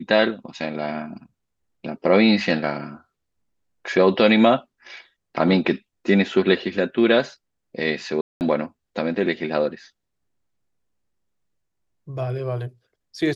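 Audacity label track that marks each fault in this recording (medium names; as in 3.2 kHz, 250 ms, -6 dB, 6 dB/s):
8.210000	8.410000	dropout 199 ms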